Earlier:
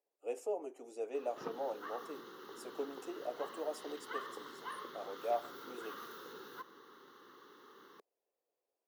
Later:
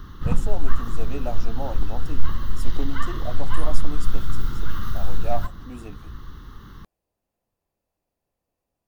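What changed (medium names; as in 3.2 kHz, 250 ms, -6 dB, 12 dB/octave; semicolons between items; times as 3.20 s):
background: entry -1.15 s; master: remove ladder high-pass 370 Hz, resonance 55%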